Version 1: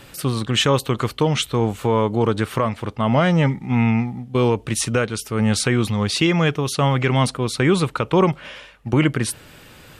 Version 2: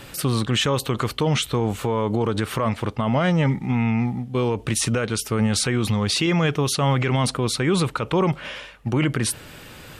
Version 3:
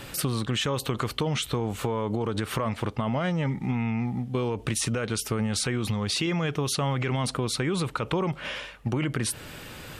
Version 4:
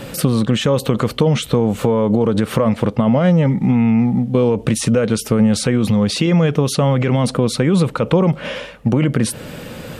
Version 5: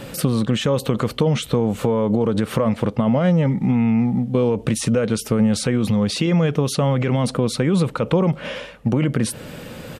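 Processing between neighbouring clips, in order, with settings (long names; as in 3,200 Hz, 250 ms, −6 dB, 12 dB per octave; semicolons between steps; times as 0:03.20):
brickwall limiter −15.5 dBFS, peak gain reduction 10 dB; level +3 dB
downward compressor, threshold −24 dBFS, peak gain reduction 8 dB
hollow resonant body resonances 200/500 Hz, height 11 dB, ringing for 20 ms; level +5 dB
downsampling to 32,000 Hz; level −3.5 dB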